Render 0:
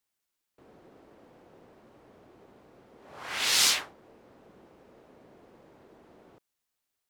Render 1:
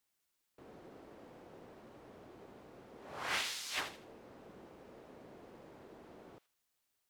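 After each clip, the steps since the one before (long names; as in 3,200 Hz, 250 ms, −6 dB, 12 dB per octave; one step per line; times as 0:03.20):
compressor whose output falls as the input rises −34 dBFS, ratio −1
delay with a high-pass on its return 80 ms, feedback 31%, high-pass 2,300 Hz, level −8.5 dB
level −5.5 dB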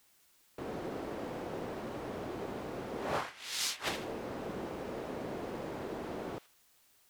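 compressor whose output falls as the input rises −46 dBFS, ratio −0.5
level +11.5 dB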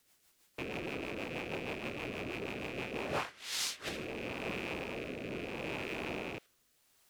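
loose part that buzzes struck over −54 dBFS, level −29 dBFS
rotating-speaker cabinet horn 6.3 Hz, later 0.75 Hz, at 0:02.80
level +1 dB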